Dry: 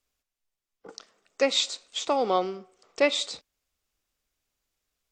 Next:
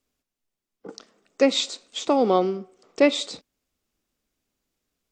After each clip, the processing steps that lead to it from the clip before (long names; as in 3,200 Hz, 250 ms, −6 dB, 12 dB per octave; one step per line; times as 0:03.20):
parametric band 240 Hz +11.5 dB 1.9 octaves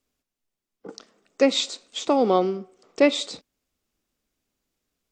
no processing that can be heard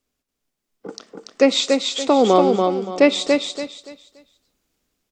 automatic gain control gain up to 5 dB
on a send: repeating echo 286 ms, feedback 28%, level −4 dB
on the sum: level +1 dB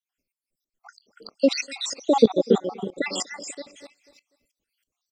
time-frequency cells dropped at random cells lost 74%
repeating echo 245 ms, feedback 39%, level −22 dB
tremolo with a ramp in dB swelling 3.1 Hz, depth 18 dB
level +6.5 dB